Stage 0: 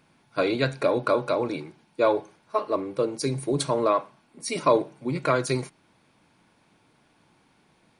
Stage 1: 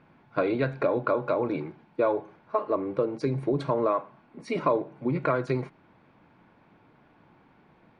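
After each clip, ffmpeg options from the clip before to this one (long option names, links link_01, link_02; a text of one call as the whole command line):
ffmpeg -i in.wav -af "acompressor=threshold=-29dB:ratio=2.5,lowpass=1900,volume=4.5dB" out.wav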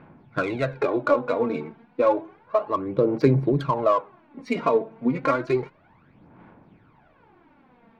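ffmpeg -i in.wav -af "highshelf=frequency=3800:gain=8,aphaser=in_gain=1:out_gain=1:delay=4.5:decay=0.63:speed=0.31:type=sinusoidal,adynamicsmooth=sensitivity=3:basefreq=2900,volume=1dB" out.wav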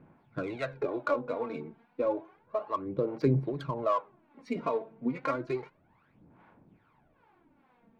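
ffmpeg -i in.wav -filter_complex "[0:a]acrossover=split=550[link_01][link_02];[link_01]aeval=exprs='val(0)*(1-0.7/2+0.7/2*cos(2*PI*2.4*n/s))':channel_layout=same[link_03];[link_02]aeval=exprs='val(0)*(1-0.7/2-0.7/2*cos(2*PI*2.4*n/s))':channel_layout=same[link_04];[link_03][link_04]amix=inputs=2:normalize=0,volume=-5.5dB" out.wav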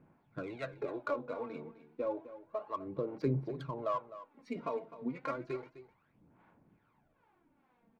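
ffmpeg -i in.wav -af "aecho=1:1:256:0.188,volume=-6.5dB" out.wav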